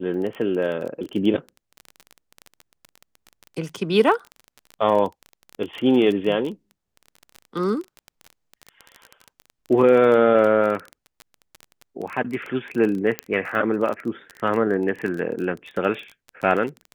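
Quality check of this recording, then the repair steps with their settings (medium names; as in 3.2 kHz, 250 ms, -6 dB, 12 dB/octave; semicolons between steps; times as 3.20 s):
crackle 22 per s -27 dBFS
13.19 s: pop -9 dBFS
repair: de-click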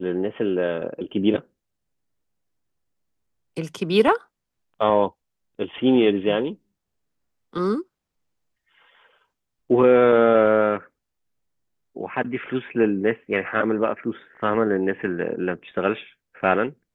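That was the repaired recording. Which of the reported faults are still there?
nothing left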